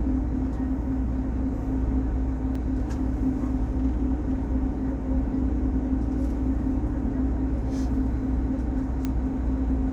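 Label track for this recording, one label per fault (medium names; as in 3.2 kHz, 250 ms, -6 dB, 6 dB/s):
2.550000	2.550000	dropout 4 ms
9.050000	9.050000	pop -15 dBFS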